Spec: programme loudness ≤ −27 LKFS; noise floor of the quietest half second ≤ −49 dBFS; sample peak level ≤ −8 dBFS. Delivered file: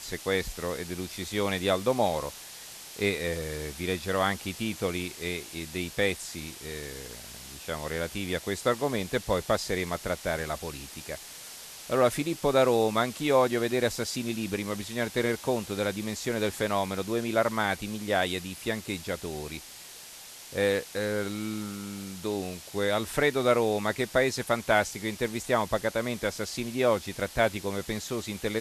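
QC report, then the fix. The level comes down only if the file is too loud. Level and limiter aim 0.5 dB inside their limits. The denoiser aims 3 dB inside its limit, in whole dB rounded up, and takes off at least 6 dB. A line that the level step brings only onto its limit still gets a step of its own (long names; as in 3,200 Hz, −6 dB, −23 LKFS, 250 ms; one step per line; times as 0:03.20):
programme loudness −29.5 LKFS: in spec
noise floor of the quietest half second −46 dBFS: out of spec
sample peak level −9.0 dBFS: in spec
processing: broadband denoise 6 dB, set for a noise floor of −46 dBFS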